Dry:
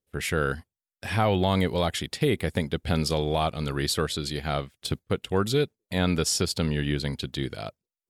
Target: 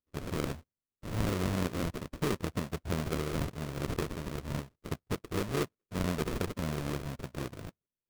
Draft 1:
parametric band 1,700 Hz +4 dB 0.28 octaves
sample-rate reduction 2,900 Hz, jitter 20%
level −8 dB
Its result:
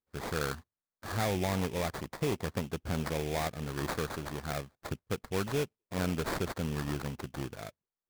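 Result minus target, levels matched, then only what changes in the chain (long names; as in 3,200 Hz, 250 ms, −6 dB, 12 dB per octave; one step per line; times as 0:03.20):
sample-rate reduction: distortion −10 dB
change: sample-rate reduction 820 Hz, jitter 20%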